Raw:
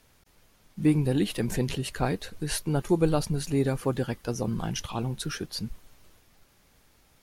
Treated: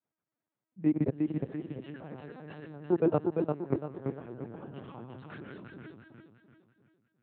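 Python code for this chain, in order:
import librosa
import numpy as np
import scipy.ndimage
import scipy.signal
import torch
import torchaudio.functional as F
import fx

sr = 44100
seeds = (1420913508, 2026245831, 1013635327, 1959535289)

y = scipy.signal.sosfilt(scipy.signal.butter(2, 1600.0, 'lowpass', fs=sr, output='sos'), x)
y = fx.peak_eq(y, sr, hz=200.0, db=-5.0, octaves=0.37)
y = fx.rev_gated(y, sr, seeds[0], gate_ms=190, shape='rising', drr_db=4.0)
y = fx.level_steps(y, sr, step_db=22)
y = fx.noise_reduce_blind(y, sr, reduce_db=23)
y = fx.echo_feedback(y, sr, ms=346, feedback_pct=42, wet_db=-4.0)
y = fx.lpc_vocoder(y, sr, seeds[1], excitation='pitch_kept', order=10)
y = scipy.signal.sosfilt(scipy.signal.butter(4, 120.0, 'highpass', fs=sr, output='sos'), y)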